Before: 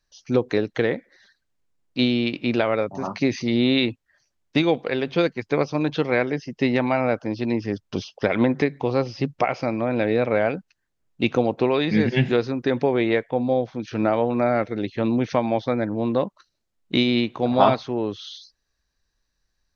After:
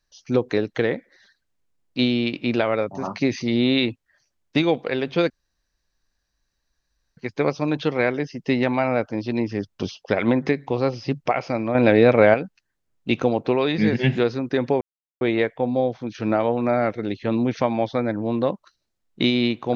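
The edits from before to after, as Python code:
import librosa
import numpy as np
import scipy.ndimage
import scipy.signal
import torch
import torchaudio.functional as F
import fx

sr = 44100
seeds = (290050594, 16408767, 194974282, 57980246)

y = fx.edit(x, sr, fx.insert_room_tone(at_s=5.3, length_s=1.87),
    fx.clip_gain(start_s=9.88, length_s=0.59, db=6.5),
    fx.insert_silence(at_s=12.94, length_s=0.4), tone=tone)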